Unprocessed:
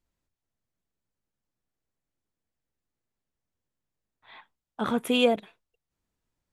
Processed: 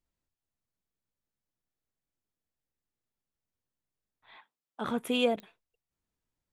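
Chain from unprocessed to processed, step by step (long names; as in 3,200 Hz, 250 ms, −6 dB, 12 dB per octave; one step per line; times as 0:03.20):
0:04.36–0:04.85: high-pass filter 220 Hz 12 dB per octave
digital clicks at 0:05.40, −25 dBFS
level −5 dB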